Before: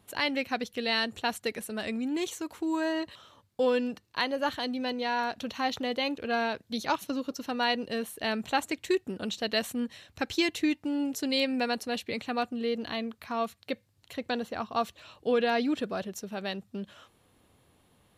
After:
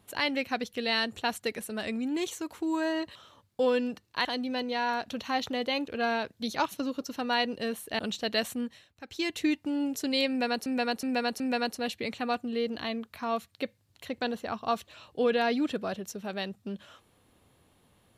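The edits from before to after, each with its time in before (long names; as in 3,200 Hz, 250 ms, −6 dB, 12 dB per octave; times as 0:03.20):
0:04.25–0:04.55: remove
0:08.29–0:09.18: remove
0:09.72–0:10.63: duck −15 dB, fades 0.42 s
0:11.48–0:11.85: repeat, 4 plays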